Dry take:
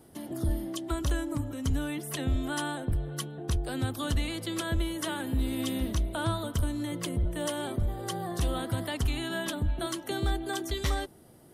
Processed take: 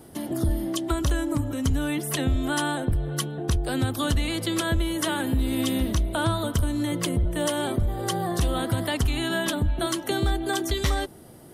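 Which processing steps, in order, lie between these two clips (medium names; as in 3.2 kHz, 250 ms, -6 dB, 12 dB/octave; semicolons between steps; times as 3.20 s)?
compression 2:1, threshold -30 dBFS, peak gain reduction 4.5 dB; trim +8 dB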